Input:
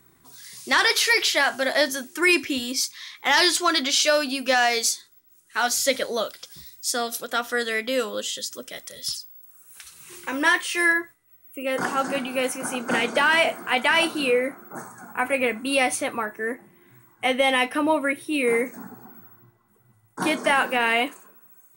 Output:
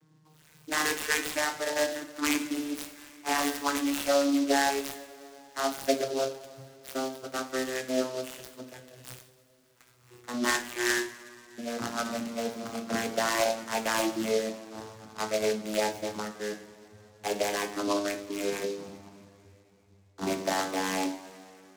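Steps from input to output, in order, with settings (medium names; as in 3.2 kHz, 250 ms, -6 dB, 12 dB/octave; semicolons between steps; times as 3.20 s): vocoder on a note that slides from D#3, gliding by -9 st; hum notches 50/100/150/200/250/300/350/400/450/500 Hz; on a send at -5 dB: reverberation, pre-delay 3 ms; on the sum: delay time shaken by noise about 4.4 kHz, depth 0.061 ms; trim -6.5 dB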